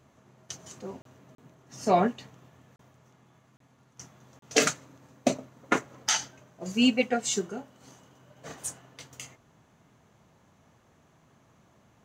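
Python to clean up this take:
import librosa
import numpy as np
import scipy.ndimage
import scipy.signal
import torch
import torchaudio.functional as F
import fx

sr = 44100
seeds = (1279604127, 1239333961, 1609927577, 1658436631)

y = fx.fix_interpolate(x, sr, at_s=(1.02, 1.35, 2.76, 3.57, 4.39), length_ms=33.0)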